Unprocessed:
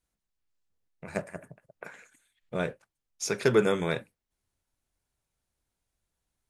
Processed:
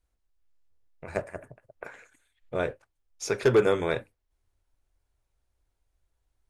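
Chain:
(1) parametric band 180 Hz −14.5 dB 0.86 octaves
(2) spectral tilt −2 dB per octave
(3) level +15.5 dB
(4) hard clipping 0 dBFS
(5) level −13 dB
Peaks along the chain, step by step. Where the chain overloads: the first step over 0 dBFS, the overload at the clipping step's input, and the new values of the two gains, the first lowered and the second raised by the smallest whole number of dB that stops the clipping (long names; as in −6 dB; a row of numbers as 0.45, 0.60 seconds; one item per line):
−11.5, −10.0, +5.5, 0.0, −13.0 dBFS
step 3, 5.5 dB
step 3 +9.5 dB, step 5 −7 dB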